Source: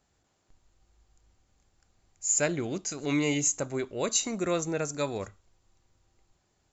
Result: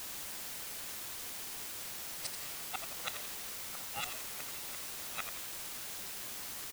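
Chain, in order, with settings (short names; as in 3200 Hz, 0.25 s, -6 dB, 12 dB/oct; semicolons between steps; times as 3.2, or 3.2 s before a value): Wiener smoothing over 9 samples; tremolo triangle 2.9 Hz, depth 85%; in parallel at -8.5 dB: sine folder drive 5 dB, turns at -16 dBFS; on the sum: HPF 130 Hz 24 dB/oct; spectral gate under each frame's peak -25 dB weak; grains 0.1 s, grains 20/s, spray 15 ms; flipped gate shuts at -42 dBFS, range -30 dB; comb 1.5 ms, depth 89%; on a send: frequency-shifting echo 85 ms, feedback 49%, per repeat -92 Hz, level -8.5 dB; on the sum: requantised 10-bit, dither triangular; gain +17 dB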